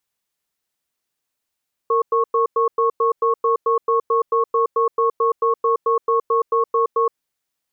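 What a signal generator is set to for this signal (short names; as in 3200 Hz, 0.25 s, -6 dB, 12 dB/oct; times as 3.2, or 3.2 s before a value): cadence 460 Hz, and 1100 Hz, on 0.12 s, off 0.10 s, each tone -17 dBFS 5.20 s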